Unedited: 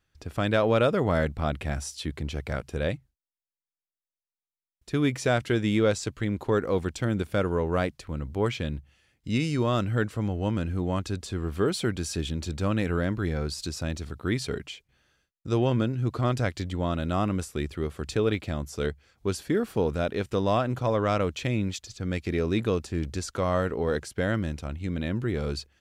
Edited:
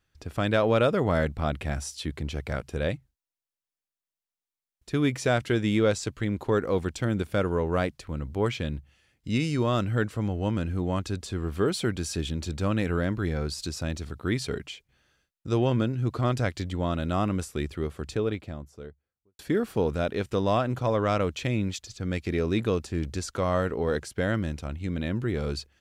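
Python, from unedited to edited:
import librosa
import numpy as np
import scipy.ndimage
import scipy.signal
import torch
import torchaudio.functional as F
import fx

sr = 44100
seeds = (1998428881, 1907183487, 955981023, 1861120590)

y = fx.studio_fade_out(x, sr, start_s=17.64, length_s=1.75)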